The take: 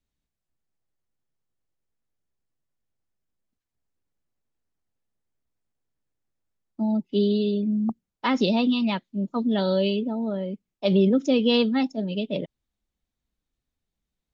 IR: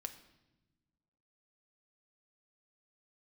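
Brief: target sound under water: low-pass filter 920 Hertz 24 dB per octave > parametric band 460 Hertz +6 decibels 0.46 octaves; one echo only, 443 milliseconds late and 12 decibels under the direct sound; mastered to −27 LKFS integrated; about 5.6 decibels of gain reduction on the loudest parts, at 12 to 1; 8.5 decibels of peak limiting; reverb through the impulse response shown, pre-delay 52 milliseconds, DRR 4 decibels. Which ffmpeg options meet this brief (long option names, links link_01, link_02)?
-filter_complex "[0:a]acompressor=threshold=-21dB:ratio=12,alimiter=limit=-20dB:level=0:latency=1,aecho=1:1:443:0.251,asplit=2[link_01][link_02];[1:a]atrim=start_sample=2205,adelay=52[link_03];[link_02][link_03]afir=irnorm=-1:irlink=0,volume=-1dB[link_04];[link_01][link_04]amix=inputs=2:normalize=0,lowpass=frequency=920:width=0.5412,lowpass=frequency=920:width=1.3066,equalizer=frequency=460:width_type=o:width=0.46:gain=6,volume=-1.5dB"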